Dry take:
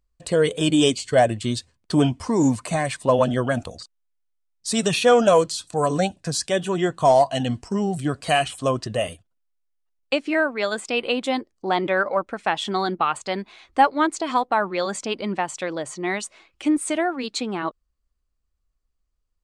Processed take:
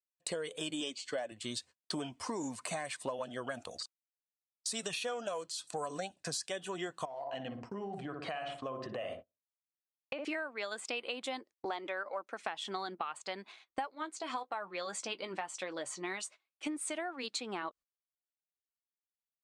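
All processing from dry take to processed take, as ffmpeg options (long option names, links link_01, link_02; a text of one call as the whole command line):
ffmpeg -i in.wav -filter_complex "[0:a]asettb=1/sr,asplit=3[link_01][link_02][link_03];[link_01]atrim=end=0.814[link_04];[link_02]atrim=start=0.81:end=1.32,asetpts=PTS-STARTPTS,afade=type=in:duration=0.004:curve=qsin,afade=type=out:start_time=0.506:duration=0.004:curve=qsin,highpass=160,lowpass=6600,aecho=1:1:3.5:0.32,atrim=end_sample=22491[link_05];[link_03]atrim=start=1.316[link_06];[link_04][link_05]acrossfade=duration=0.004:curve1=hsin:curve2=qsin[link_07];[link_07][link_06]acrossfade=duration=0.004:curve1=qsin:curve2=hsin,asettb=1/sr,asplit=3[link_08][link_09][link_10];[link_08]atrim=end=7.054[link_11];[link_09]atrim=start=7.05:end=10.25,asetpts=PTS-STARTPTS,afade=type=in:duration=0.004:curve=qsin,afade=type=out:start_time=3.196:duration=0.004:curve=qsin,lowpass=2300,asplit=2[link_12][link_13];[link_13]adelay=60,lowpass=frequency=810:poles=1,volume=-5dB,asplit=2[link_14][link_15];[link_15]adelay=60,lowpass=frequency=810:poles=1,volume=0.42,asplit=2[link_16][link_17];[link_17]adelay=60,lowpass=frequency=810:poles=1,volume=0.42,asplit=2[link_18][link_19];[link_19]adelay=60,lowpass=frequency=810:poles=1,volume=0.42,asplit=2[link_20][link_21];[link_21]adelay=60,lowpass=frequency=810:poles=1,volume=0.42[link_22];[link_12][link_14][link_16][link_18][link_20][link_22]amix=inputs=6:normalize=0,atrim=end_sample=141120,acompressor=threshold=-28dB:ratio=6:attack=3.2:release=140:knee=1:detection=peak[link_23];[link_10]atrim=start=10.246[link_24];[link_11][link_23]acrossfade=duration=0.004:curve1=hsin:curve2=qsin[link_25];[link_25][link_24]acrossfade=duration=0.004:curve1=qsin:curve2=hsin,asettb=1/sr,asplit=3[link_26][link_27][link_28];[link_26]atrim=end=11.654[link_29];[link_27]atrim=start=11.65:end=12.42,asetpts=PTS-STARTPTS,afade=type=in:duration=0.004:curve=qsin,afade=type=out:start_time=0.766:duration=0.004:curve=qsin,highpass=frequency=210:width=0.5412,highpass=frequency=210:width=1.3066,equalizer=frequency=6200:width_type=o:width=0.22:gain=7[link_30];[link_28]atrim=start=12.416[link_31];[link_29][link_30]acrossfade=duration=0.004:curve1=hsin:curve2=qsin[link_32];[link_32][link_31]acrossfade=duration=0.004:curve1=qsin:curve2=hsin,asettb=1/sr,asplit=3[link_33][link_34][link_35];[link_33]atrim=end=13.954[link_36];[link_34]atrim=start=13.95:end=16.67,asetpts=PTS-STARTPTS,afade=type=in:duration=0.004:curve=qsin,afade=type=out:start_time=2.716:duration=0.004:curve=qsin,flanger=delay=5.7:depth=1.8:regen=-54:speed=1.8:shape=triangular,asplit=2[link_37][link_38];[link_38]adelay=16,volume=-13.5dB[link_39];[link_37][link_39]amix=inputs=2:normalize=0,atrim=end_sample=119952[link_40];[link_35]atrim=start=16.666[link_41];[link_36][link_40]acrossfade=duration=0.004:curve1=hsin:curve2=qsin[link_42];[link_42][link_41]acrossfade=duration=0.004:curve1=qsin:curve2=hsin,highpass=frequency=650:poles=1,agate=range=-26dB:threshold=-45dB:ratio=16:detection=peak,acompressor=threshold=-34dB:ratio=12,volume=-1dB" out.wav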